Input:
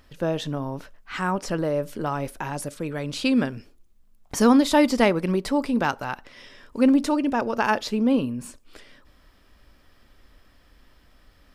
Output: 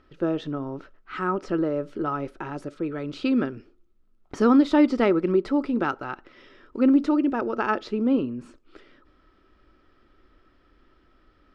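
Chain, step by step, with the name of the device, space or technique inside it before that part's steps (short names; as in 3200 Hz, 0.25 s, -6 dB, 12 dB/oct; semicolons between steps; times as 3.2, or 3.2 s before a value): inside a cardboard box (LPF 3800 Hz 12 dB/oct; small resonant body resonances 350/1300 Hz, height 13 dB, ringing for 30 ms); gain -6 dB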